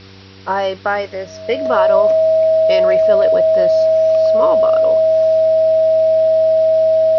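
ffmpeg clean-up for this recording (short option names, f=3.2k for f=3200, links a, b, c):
-af "bandreject=f=96.2:t=h:w=4,bandreject=f=192.4:t=h:w=4,bandreject=f=288.6:t=h:w=4,bandreject=f=384.8:t=h:w=4,bandreject=f=481:t=h:w=4,bandreject=f=640:w=30,agate=range=-21dB:threshold=-24dB"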